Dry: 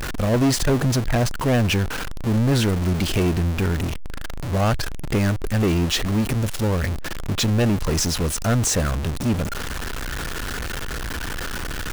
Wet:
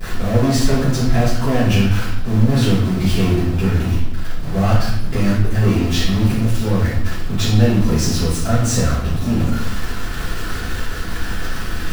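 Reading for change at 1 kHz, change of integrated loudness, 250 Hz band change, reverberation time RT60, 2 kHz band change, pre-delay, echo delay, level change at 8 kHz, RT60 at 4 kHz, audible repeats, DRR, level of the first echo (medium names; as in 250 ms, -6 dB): +2.5 dB, +4.0 dB, +4.5 dB, 0.80 s, +1.5 dB, 3 ms, no echo, -0.5 dB, 0.70 s, no echo, -14.5 dB, no echo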